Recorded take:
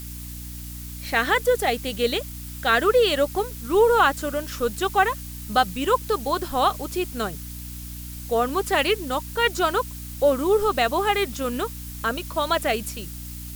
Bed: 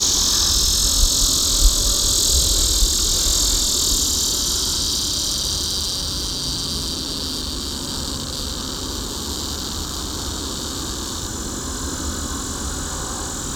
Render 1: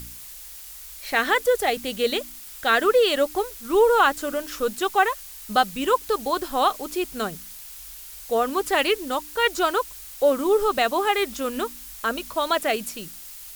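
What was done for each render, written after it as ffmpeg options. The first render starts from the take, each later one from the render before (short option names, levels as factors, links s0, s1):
-af "bandreject=f=60:t=h:w=4,bandreject=f=120:t=h:w=4,bandreject=f=180:t=h:w=4,bandreject=f=240:t=h:w=4,bandreject=f=300:t=h:w=4"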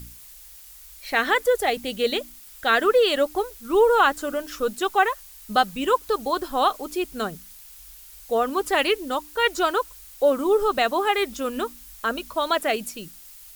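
-af "afftdn=nr=6:nf=-41"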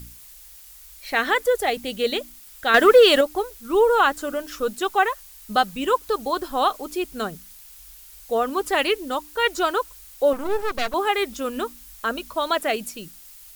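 -filter_complex "[0:a]asettb=1/sr,asplit=3[s0][s1][s2];[s0]atrim=end=2.744[s3];[s1]atrim=start=2.74:end=3.21,asetpts=PTS-STARTPTS,afade=t=in:d=0.004:c=qsin,afade=t=out:st=0.466:d=0.004:c=qsin,acontrast=82[s4];[s2]atrim=start=3.206[s5];[s3][s4]acrossfade=d=0.004:c1=hsin:c2=qsin[s6];[s6][s5]acrossfade=d=0.004:c1=qsin:c2=hsin,asettb=1/sr,asplit=3[s7][s8][s9];[s7]atrim=end=10.334[s10];[s8]atrim=start=10.33:end=10.94,asetpts=PTS-STARTPTS,afade=t=in:d=0.004:c=qsin,afade=t=out:st=0.606:d=0.004:c=qsin,aeval=exprs='max(val(0),0)':c=same[s11];[s9]atrim=start=10.936[s12];[s10][s11]acrossfade=d=0.004:c1=hsin:c2=qsin[s13];[s13][s12]acrossfade=d=0.004:c1=qsin:c2=hsin"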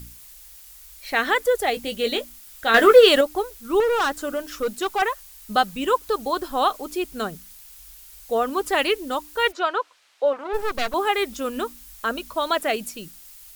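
-filter_complex "[0:a]asettb=1/sr,asplit=3[s0][s1][s2];[s0]atrim=end=1.724[s3];[s1]atrim=start=1.72:end=3.09,asetpts=PTS-STARTPTS,afade=t=in:d=0.004:c=qsin,afade=t=out:st=1.366:d=0.004:c=qsin,asplit=2[s4][s5];[s5]adelay=18,volume=0.376[s6];[s4][s6]amix=inputs=2:normalize=0,atrim=end_sample=60417[s7];[s2]atrim=start=3.086[s8];[s3][s7]acrossfade=d=0.004:c1=hsin:c2=qsin[s9];[s9][s8]acrossfade=d=0.004:c1=qsin:c2=hsin,asettb=1/sr,asplit=3[s10][s11][s12];[s10]atrim=end=3.804[s13];[s11]atrim=start=3.8:end=5.02,asetpts=PTS-STARTPTS,afade=t=in:d=0.004:c=qsin,afade=t=out:st=1.216:d=0.004:c=qsin,asoftclip=type=hard:threshold=0.126[s14];[s12]atrim=start=5.016[s15];[s13][s14]acrossfade=d=0.004:c1=hsin:c2=qsin[s16];[s16][s15]acrossfade=d=0.004:c1=qsin:c2=hsin,asplit=3[s17][s18][s19];[s17]afade=t=out:st=9.51:d=0.02[s20];[s18]highpass=480,lowpass=3400,afade=t=in:st=9.51:d=0.02,afade=t=out:st=10.53:d=0.02[s21];[s19]afade=t=in:st=10.53:d=0.02[s22];[s20][s21][s22]amix=inputs=3:normalize=0"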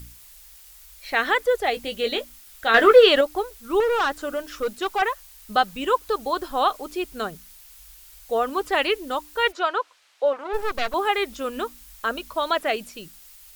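-filter_complex "[0:a]acrossover=split=4900[s0][s1];[s1]acompressor=threshold=0.00708:ratio=4:attack=1:release=60[s2];[s0][s2]amix=inputs=2:normalize=0,equalizer=f=210:w=1.1:g=-4.5"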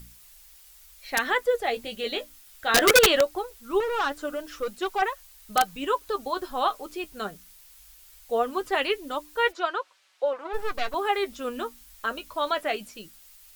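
-af "flanger=delay=5.1:depth=5.3:regen=44:speed=0.2:shape=triangular,aeval=exprs='(mod(3.35*val(0)+1,2)-1)/3.35':c=same"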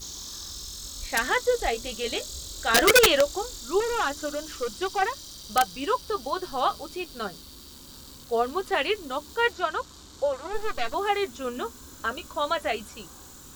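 -filter_complex "[1:a]volume=0.0841[s0];[0:a][s0]amix=inputs=2:normalize=0"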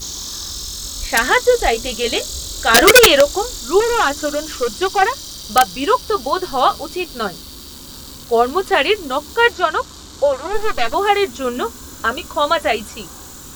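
-af "volume=3.35,alimiter=limit=0.891:level=0:latency=1"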